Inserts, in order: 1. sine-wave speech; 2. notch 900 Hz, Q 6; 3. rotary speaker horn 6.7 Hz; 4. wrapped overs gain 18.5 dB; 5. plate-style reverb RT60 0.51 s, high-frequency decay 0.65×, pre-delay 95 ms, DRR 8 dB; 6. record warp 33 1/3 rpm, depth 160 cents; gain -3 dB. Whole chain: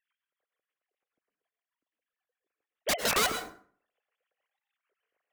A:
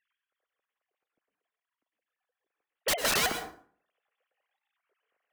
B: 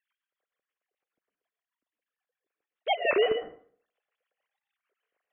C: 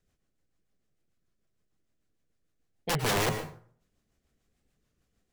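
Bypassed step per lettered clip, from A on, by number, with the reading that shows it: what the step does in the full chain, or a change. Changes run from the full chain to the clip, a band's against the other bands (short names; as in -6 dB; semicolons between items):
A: 3, 1 kHz band -2.0 dB; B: 4, 500 Hz band +8.5 dB; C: 1, 125 Hz band +16.0 dB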